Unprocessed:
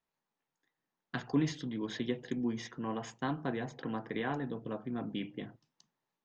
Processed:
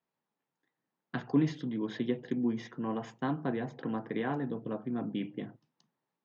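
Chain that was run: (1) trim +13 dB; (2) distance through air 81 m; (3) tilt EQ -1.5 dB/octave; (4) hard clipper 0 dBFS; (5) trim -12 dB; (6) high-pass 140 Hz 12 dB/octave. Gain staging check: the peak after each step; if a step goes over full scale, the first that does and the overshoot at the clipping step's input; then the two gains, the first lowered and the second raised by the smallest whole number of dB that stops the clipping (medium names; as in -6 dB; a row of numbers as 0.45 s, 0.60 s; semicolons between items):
-6.5 dBFS, -6.5 dBFS, -3.0 dBFS, -3.0 dBFS, -15.0 dBFS, -16.5 dBFS; nothing clips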